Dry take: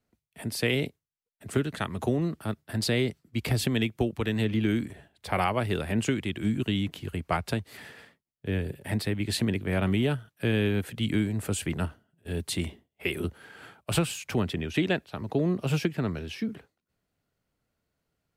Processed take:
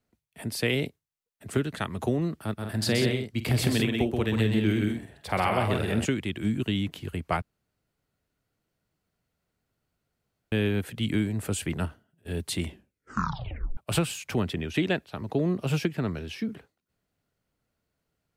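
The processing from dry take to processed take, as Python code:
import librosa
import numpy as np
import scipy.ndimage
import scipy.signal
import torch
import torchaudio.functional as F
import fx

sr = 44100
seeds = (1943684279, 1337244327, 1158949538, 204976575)

y = fx.echo_multitap(x, sr, ms=(47, 128, 176), db=(-12.5, -4.5, -7.5), at=(2.57, 6.04), fade=0.02)
y = fx.edit(y, sr, fx.room_tone_fill(start_s=7.42, length_s=3.1),
    fx.tape_stop(start_s=12.66, length_s=1.11), tone=tone)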